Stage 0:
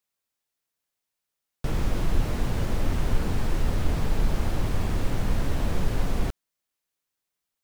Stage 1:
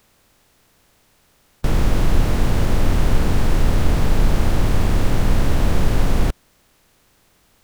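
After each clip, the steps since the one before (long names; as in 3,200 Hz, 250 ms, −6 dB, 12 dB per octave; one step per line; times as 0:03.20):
compressor on every frequency bin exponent 0.6
level +5.5 dB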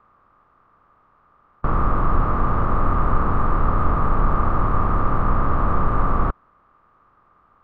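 low-pass with resonance 1,200 Hz, resonance Q 10
level −3.5 dB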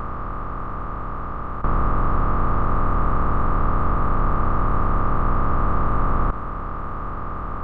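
compressor on every frequency bin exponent 0.2
level −6 dB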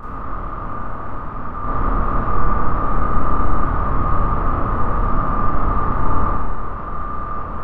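four-comb reverb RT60 1.1 s, combs from 26 ms, DRR −8.5 dB
level −7 dB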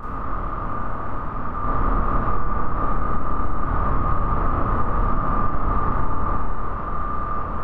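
downward compressor, threshold −14 dBFS, peak gain reduction 8 dB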